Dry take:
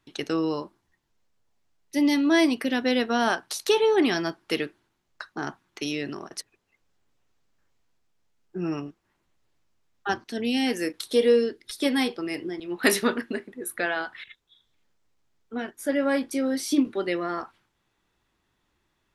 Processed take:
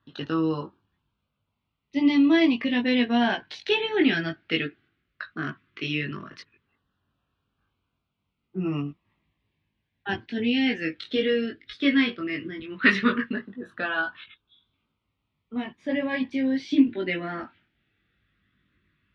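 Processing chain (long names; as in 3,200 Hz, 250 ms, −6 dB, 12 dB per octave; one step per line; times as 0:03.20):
auto-filter notch saw down 0.15 Hz 700–2,300 Hz
low-pass filter 3,200 Hz 24 dB per octave
flat-topped bell 540 Hz −8.5 dB
multi-voice chorus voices 4, 0.18 Hz, delay 20 ms, depth 1.7 ms
high-pass filter 65 Hz
level +8.5 dB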